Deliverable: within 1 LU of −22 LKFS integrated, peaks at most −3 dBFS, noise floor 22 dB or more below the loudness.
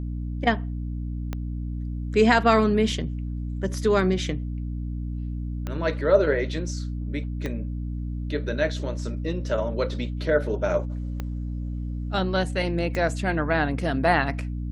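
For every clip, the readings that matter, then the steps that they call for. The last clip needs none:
number of clicks 5; mains hum 60 Hz; hum harmonics up to 300 Hz; level of the hum −27 dBFS; integrated loudness −26.0 LKFS; sample peak −3.0 dBFS; target loudness −22.0 LKFS
→ click removal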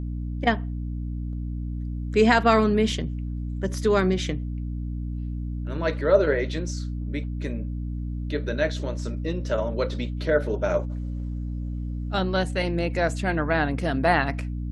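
number of clicks 0; mains hum 60 Hz; hum harmonics up to 300 Hz; level of the hum −27 dBFS
→ mains-hum notches 60/120/180/240/300 Hz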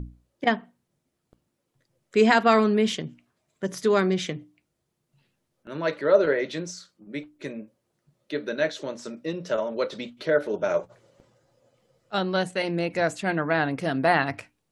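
mains hum none found; integrated loudness −25.0 LKFS; sample peak −3.5 dBFS; target loudness −22.0 LKFS
→ level +3 dB
brickwall limiter −3 dBFS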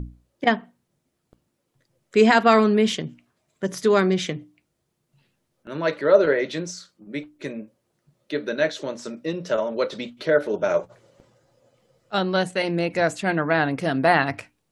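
integrated loudness −22.0 LKFS; sample peak −3.0 dBFS; background noise floor −75 dBFS

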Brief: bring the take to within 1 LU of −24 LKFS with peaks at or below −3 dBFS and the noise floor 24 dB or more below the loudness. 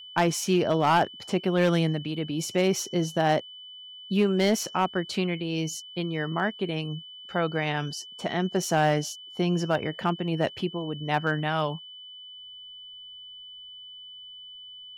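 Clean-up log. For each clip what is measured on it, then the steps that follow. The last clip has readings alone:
share of clipped samples 0.4%; peaks flattened at −15.0 dBFS; interfering tone 3,000 Hz; level of the tone −42 dBFS; integrated loudness −27.0 LKFS; sample peak −15.0 dBFS; target loudness −24.0 LKFS
→ clipped peaks rebuilt −15 dBFS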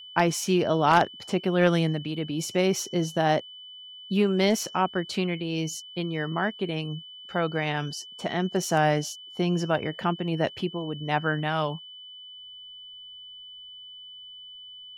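share of clipped samples 0.0%; interfering tone 3,000 Hz; level of the tone −42 dBFS
→ notch filter 3,000 Hz, Q 30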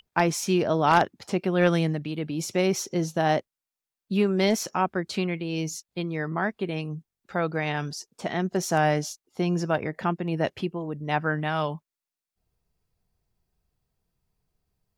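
interfering tone none found; integrated loudness −26.5 LKFS; sample peak −6.0 dBFS; target loudness −24.0 LKFS
→ level +2.5 dB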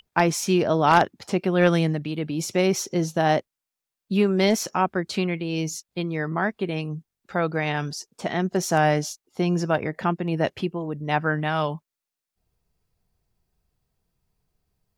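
integrated loudness −24.0 LKFS; sample peak −3.5 dBFS; background noise floor −87 dBFS

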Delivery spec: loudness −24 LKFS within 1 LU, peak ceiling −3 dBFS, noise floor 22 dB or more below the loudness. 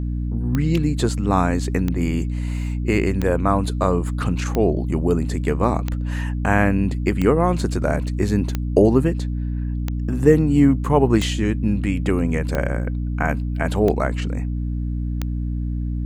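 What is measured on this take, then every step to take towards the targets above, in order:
number of clicks 12; mains hum 60 Hz; hum harmonics up to 300 Hz; level of the hum −21 dBFS; integrated loudness −21.0 LKFS; sample peak −1.5 dBFS; target loudness −24.0 LKFS
→ click removal
mains-hum notches 60/120/180/240/300 Hz
level −3 dB

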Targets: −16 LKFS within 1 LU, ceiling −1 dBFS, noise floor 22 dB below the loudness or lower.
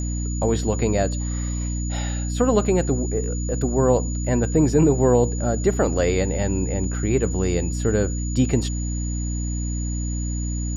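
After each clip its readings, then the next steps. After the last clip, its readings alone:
mains hum 60 Hz; hum harmonics up to 300 Hz; level of the hum −23 dBFS; interfering tone 6,900 Hz; level of the tone −34 dBFS; integrated loudness −22.5 LKFS; sample peak −6.0 dBFS; target loudness −16.0 LKFS
→ mains-hum notches 60/120/180/240/300 Hz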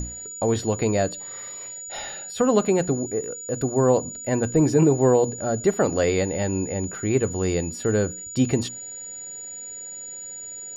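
mains hum none found; interfering tone 6,900 Hz; level of the tone −34 dBFS
→ notch filter 6,900 Hz, Q 30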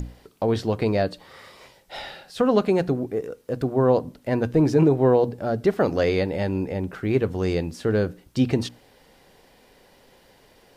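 interfering tone none found; integrated loudness −23.0 LKFS; sample peak −7.0 dBFS; target loudness −16.0 LKFS
→ level +7 dB
brickwall limiter −1 dBFS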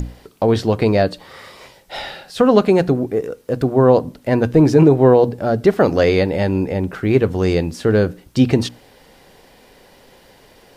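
integrated loudness −16.0 LKFS; sample peak −1.0 dBFS; background noise floor −49 dBFS

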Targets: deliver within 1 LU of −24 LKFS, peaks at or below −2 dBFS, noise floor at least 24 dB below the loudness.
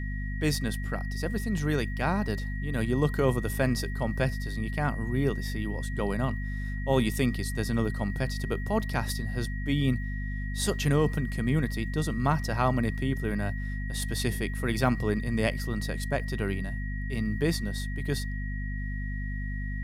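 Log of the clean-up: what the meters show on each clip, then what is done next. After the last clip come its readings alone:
mains hum 50 Hz; hum harmonics up to 250 Hz; level of the hum −30 dBFS; interfering tone 1,900 Hz; level of the tone −41 dBFS; integrated loudness −30.0 LKFS; sample peak −10.5 dBFS; target loudness −24.0 LKFS
→ hum removal 50 Hz, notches 5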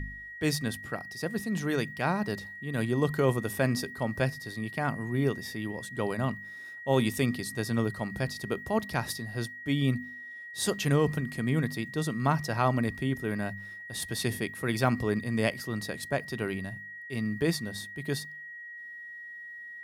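mains hum none found; interfering tone 1,900 Hz; level of the tone −41 dBFS
→ notch filter 1,900 Hz, Q 30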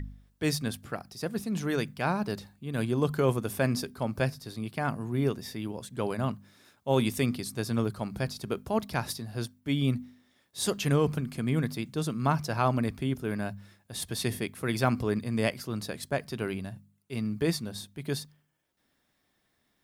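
interfering tone none found; integrated loudness −31.0 LKFS; sample peak −11.0 dBFS; target loudness −24.0 LKFS
→ level +7 dB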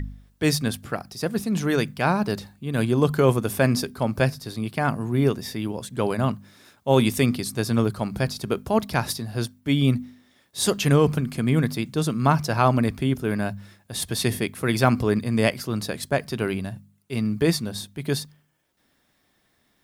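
integrated loudness −24.0 LKFS; sample peak −4.0 dBFS; background noise floor −67 dBFS

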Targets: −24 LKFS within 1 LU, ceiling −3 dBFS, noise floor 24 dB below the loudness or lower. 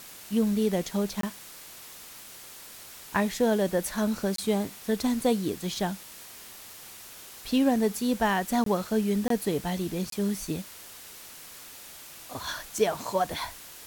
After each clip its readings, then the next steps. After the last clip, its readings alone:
number of dropouts 5; longest dropout 23 ms; background noise floor −46 dBFS; target noise floor −52 dBFS; integrated loudness −28.0 LKFS; sample peak −11.0 dBFS; target loudness −24.0 LKFS
→ repair the gap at 0:01.21/0:04.36/0:08.64/0:09.28/0:10.10, 23 ms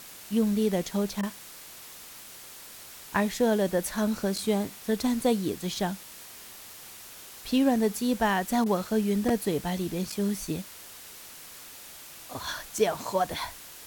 number of dropouts 0; background noise floor −46 dBFS; target noise floor −52 dBFS
→ noise reduction from a noise print 6 dB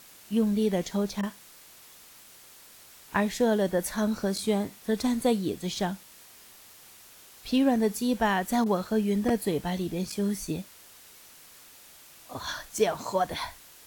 background noise floor −52 dBFS; integrated loudness −28.0 LKFS; sample peak −11.0 dBFS; target loudness −24.0 LKFS
→ level +4 dB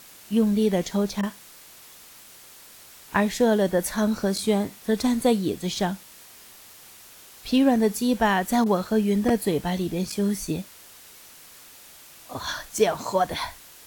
integrated loudness −24.0 LKFS; sample peak −7.0 dBFS; background noise floor −48 dBFS

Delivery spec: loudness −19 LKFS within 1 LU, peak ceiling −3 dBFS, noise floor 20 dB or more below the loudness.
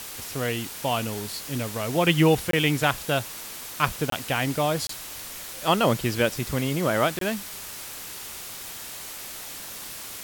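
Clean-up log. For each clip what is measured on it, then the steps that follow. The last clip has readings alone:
number of dropouts 4; longest dropout 23 ms; background noise floor −38 dBFS; target noise floor −47 dBFS; integrated loudness −26.5 LKFS; sample peak −4.5 dBFS; target loudness −19.0 LKFS
→ repair the gap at 0:02.51/0:04.10/0:04.87/0:07.19, 23 ms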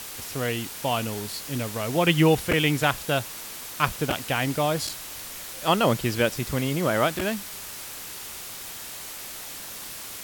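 number of dropouts 0; background noise floor −38 dBFS; target noise floor −47 dBFS
→ broadband denoise 9 dB, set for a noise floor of −38 dBFS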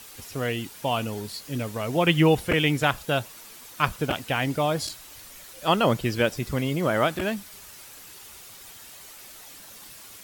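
background noise floor −46 dBFS; integrated loudness −25.5 LKFS; sample peak −4.5 dBFS; target loudness −19.0 LKFS
→ level +6.5 dB
brickwall limiter −3 dBFS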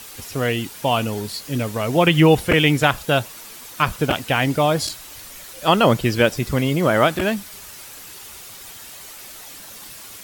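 integrated loudness −19.0 LKFS; sample peak −3.0 dBFS; background noise floor −39 dBFS

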